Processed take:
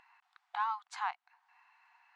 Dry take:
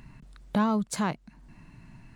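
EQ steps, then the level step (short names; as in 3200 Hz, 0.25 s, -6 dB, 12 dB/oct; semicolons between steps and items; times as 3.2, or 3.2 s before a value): brick-wall FIR high-pass 710 Hz; tape spacing loss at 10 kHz 21 dB; high shelf 9000 Hz -10 dB; 0.0 dB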